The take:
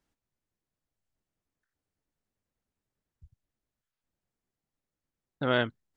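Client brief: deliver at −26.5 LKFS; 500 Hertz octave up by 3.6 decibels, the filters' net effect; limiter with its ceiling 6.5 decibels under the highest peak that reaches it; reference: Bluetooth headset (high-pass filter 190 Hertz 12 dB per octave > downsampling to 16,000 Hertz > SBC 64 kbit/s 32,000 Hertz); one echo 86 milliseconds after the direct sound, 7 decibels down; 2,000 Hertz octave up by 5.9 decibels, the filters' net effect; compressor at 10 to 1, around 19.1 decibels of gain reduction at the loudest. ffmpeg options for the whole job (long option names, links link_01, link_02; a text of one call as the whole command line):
ffmpeg -i in.wav -af "equalizer=frequency=500:width_type=o:gain=4,equalizer=frequency=2000:width_type=o:gain=8.5,acompressor=threshold=-36dB:ratio=10,alimiter=level_in=5.5dB:limit=-24dB:level=0:latency=1,volume=-5.5dB,highpass=190,aecho=1:1:86:0.447,aresample=16000,aresample=44100,volume=18.5dB" -ar 32000 -c:a sbc -b:a 64k out.sbc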